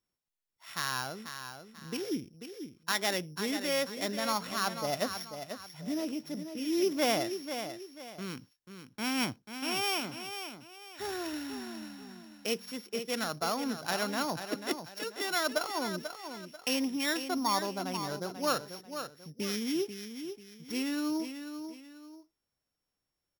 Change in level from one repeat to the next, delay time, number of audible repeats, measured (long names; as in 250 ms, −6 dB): −9.5 dB, 490 ms, 2